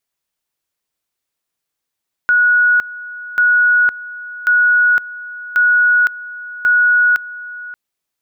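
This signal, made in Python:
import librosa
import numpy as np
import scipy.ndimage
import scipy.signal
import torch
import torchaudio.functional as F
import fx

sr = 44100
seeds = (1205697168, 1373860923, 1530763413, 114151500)

y = fx.two_level_tone(sr, hz=1460.0, level_db=-8.5, drop_db=18.0, high_s=0.51, low_s=0.58, rounds=5)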